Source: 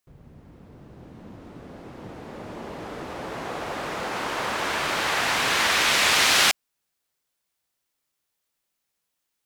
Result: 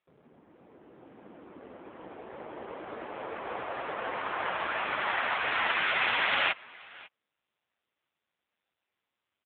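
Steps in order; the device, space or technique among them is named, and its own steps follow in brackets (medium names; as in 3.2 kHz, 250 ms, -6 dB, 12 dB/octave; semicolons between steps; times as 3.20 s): 3.17–4.17 s: high-pass 180 Hz 12 dB/octave; satellite phone (band-pass 320–3100 Hz; delay 550 ms -22.5 dB; AMR-NB 5.9 kbps 8 kHz)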